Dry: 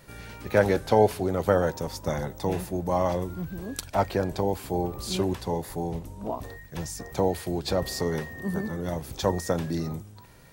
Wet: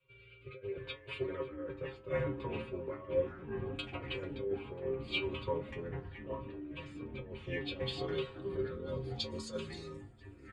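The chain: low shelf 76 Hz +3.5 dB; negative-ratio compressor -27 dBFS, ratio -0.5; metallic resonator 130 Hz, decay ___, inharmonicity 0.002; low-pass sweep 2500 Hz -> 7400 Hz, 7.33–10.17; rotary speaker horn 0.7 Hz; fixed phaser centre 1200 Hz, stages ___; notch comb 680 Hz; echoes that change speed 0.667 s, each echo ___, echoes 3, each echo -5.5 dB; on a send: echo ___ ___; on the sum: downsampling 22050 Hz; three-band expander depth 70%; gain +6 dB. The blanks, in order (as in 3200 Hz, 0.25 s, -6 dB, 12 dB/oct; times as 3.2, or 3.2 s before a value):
0.25 s, 8, -5 st, 0.988 s, -20 dB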